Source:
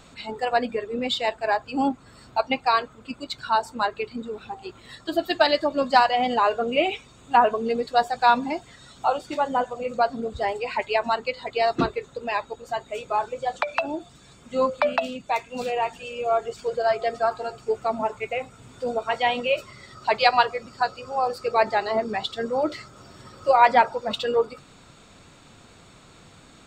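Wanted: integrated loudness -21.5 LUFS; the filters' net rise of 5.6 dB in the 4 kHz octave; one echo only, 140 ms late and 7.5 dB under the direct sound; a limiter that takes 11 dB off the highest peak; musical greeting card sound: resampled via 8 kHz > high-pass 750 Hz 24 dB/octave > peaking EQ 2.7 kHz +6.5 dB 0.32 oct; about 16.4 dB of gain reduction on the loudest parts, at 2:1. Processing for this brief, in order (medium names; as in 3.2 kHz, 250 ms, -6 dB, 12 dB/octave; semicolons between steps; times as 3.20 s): peaking EQ 4 kHz +4.5 dB; compression 2:1, threshold -43 dBFS; peak limiter -29 dBFS; delay 140 ms -7.5 dB; resampled via 8 kHz; high-pass 750 Hz 24 dB/octave; peaking EQ 2.7 kHz +6.5 dB 0.32 oct; trim +20.5 dB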